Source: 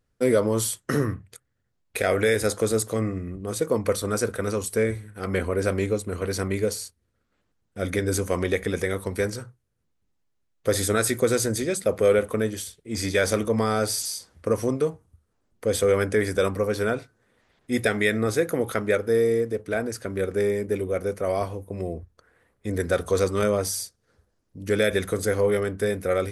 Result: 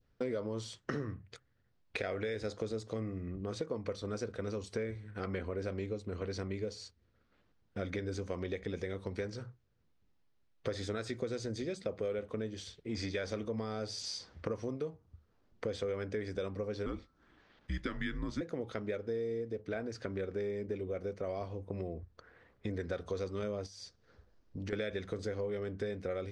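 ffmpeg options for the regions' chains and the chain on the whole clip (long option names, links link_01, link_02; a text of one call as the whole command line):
ffmpeg -i in.wav -filter_complex "[0:a]asettb=1/sr,asplit=3[link_01][link_02][link_03];[link_01]atrim=end=16.864[link_04];[link_02]atrim=start=16.86:end=18.41,asetpts=PTS-STARTPTS,afade=type=in:duration=0.004:curve=qsin,afade=type=out:start_time=1.546:duration=0.004:curve=qsin,highpass=frequency=140:width=0.5412,highpass=frequency=140:width=1.3066,afreqshift=-180[link_05];[link_03]atrim=start=18.406[link_06];[link_04][link_05]acrossfade=duration=0.004:curve1=hsin:curve2=qsin[link_07];[link_07][link_06]acrossfade=duration=0.004:curve1=qsin:curve2=hsin,asettb=1/sr,asplit=3[link_08][link_09][link_10];[link_08]atrim=end=23.664[link_11];[link_09]atrim=start=23.66:end=24.73,asetpts=PTS-STARTPTS,afade=type=in:duration=0.004:curve=qsin,afade=type=out:start_time=1.066:duration=0.004:curve=qsin,asubboost=boost=7.5:cutoff=60,acompressor=threshold=-35dB:ratio=6:attack=3.2:release=140:knee=1:detection=peak[link_12];[link_10]atrim=start=24.726[link_13];[link_11][link_12]acrossfade=duration=0.004:curve1=hsin:curve2=qsin[link_14];[link_14][link_13]acrossfade=duration=0.004:curve1=qsin:curve2=hsin,lowpass=frequency=5300:width=0.5412,lowpass=frequency=5300:width=1.3066,adynamicequalizer=threshold=0.01:dfrequency=1400:dqfactor=0.81:tfrequency=1400:tqfactor=0.81:attack=5:release=100:ratio=0.375:range=3.5:mode=cutabove:tftype=bell,acompressor=threshold=-38dB:ratio=4,volume=1dB" out.wav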